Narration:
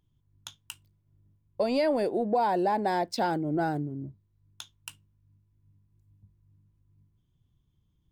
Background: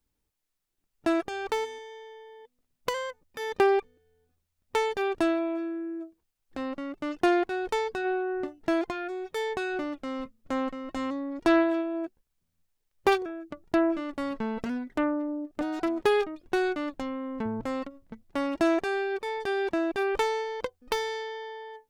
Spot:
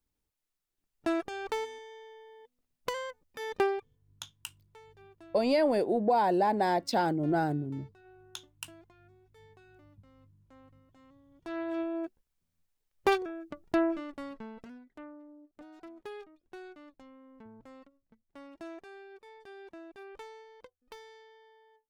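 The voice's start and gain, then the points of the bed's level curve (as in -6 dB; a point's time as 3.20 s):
3.75 s, 0.0 dB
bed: 3.61 s -4.5 dB
4.20 s -28.5 dB
11.29 s -28.5 dB
11.82 s -3 dB
13.82 s -3 dB
14.93 s -20.5 dB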